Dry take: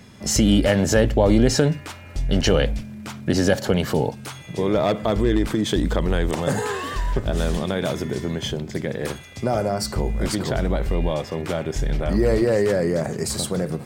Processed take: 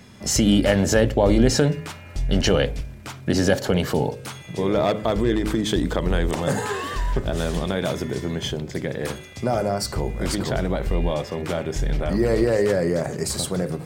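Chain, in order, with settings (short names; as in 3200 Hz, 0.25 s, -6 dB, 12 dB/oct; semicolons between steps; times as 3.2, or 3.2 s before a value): de-hum 53.23 Hz, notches 11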